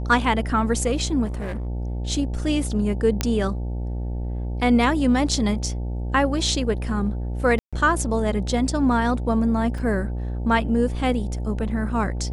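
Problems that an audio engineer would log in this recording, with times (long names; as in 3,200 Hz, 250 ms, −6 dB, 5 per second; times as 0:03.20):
mains buzz 60 Hz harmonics 15 −27 dBFS
0:01.25–0:01.67: clipping −25.5 dBFS
0:03.21: click −6 dBFS
0:07.59–0:07.73: drop-out 136 ms
0:09.78: drop-out 3.9 ms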